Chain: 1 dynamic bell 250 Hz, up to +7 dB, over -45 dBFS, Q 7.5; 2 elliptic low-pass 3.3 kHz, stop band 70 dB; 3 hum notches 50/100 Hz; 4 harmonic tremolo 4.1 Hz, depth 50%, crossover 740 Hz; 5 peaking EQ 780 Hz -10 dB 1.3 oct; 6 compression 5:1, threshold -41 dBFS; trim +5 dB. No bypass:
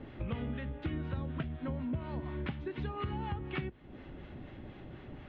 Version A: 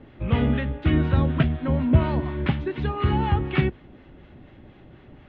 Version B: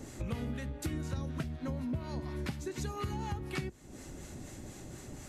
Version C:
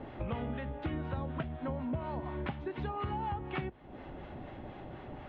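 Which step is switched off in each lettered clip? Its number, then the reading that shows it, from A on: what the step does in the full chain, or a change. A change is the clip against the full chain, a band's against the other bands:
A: 6, mean gain reduction 10.5 dB; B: 2, 4 kHz band +3.0 dB; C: 5, 1 kHz band +6.0 dB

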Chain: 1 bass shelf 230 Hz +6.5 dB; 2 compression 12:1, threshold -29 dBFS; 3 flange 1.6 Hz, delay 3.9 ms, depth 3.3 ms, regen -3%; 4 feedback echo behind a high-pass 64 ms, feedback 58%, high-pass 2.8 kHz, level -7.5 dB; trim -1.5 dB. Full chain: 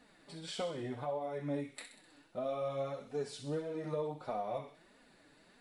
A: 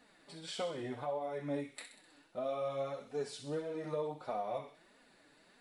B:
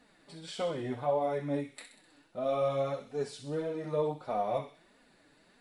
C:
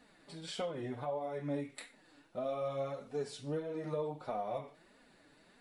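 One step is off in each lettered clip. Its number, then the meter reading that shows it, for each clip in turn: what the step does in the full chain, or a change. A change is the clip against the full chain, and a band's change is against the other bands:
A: 1, 125 Hz band -4.0 dB; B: 2, mean gain reduction 3.0 dB; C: 4, echo-to-direct -14.0 dB to none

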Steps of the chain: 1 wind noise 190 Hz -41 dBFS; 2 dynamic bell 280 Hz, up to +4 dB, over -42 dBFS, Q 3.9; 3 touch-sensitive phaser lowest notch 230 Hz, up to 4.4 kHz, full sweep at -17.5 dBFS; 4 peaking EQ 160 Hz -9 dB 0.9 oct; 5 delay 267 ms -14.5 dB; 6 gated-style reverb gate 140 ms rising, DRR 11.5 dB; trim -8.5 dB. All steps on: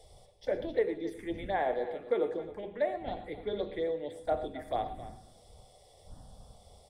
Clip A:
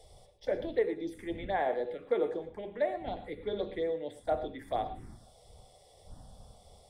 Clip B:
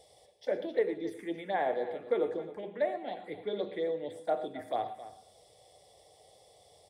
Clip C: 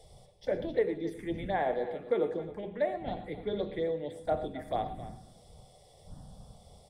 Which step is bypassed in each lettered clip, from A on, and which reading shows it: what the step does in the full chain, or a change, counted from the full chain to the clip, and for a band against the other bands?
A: 5, echo-to-direct -9.5 dB to -11.5 dB; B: 1, 125 Hz band -5.5 dB; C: 4, 125 Hz band +5.0 dB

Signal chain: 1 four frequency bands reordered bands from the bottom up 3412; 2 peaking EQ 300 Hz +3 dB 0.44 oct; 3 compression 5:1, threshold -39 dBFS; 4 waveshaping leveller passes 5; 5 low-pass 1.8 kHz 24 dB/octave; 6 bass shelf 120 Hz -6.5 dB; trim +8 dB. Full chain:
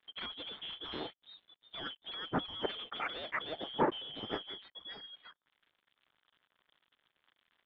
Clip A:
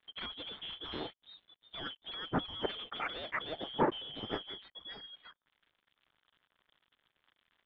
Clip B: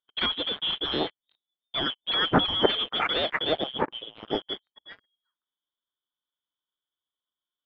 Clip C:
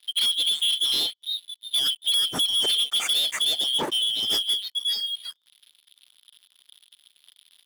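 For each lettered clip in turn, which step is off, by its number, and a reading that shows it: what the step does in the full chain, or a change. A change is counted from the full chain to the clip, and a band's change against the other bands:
6, 125 Hz band +2.5 dB; 3, mean gain reduction 9.0 dB; 5, 4 kHz band +21.5 dB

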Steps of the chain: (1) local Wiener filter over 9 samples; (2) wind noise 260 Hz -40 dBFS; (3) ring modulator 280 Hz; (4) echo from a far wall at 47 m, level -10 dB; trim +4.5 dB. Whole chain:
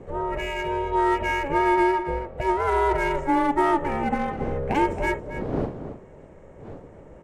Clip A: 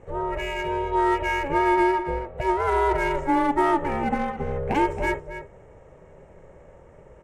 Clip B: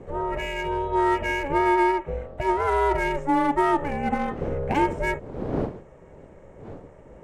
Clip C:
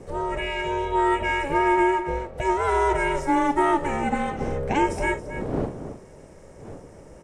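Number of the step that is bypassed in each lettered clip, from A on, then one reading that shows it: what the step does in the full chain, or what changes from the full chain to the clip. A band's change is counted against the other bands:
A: 2, momentary loudness spread change -7 LU; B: 4, echo-to-direct -11.0 dB to none; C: 1, 4 kHz band +2.0 dB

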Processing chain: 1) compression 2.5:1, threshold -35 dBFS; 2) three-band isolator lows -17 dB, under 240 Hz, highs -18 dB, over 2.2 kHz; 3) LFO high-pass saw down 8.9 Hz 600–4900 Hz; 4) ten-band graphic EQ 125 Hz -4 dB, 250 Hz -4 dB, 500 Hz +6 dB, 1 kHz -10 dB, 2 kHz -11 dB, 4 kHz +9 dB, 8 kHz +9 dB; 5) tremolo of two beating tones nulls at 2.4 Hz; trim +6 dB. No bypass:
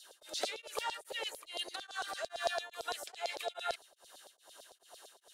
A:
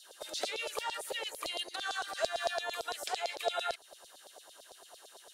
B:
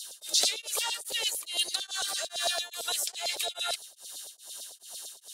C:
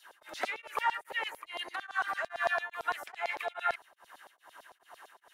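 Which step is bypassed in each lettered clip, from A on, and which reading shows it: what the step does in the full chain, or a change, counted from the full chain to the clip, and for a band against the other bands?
5, loudness change +3.0 LU; 2, 8 kHz band +15.5 dB; 4, momentary loudness spread change -12 LU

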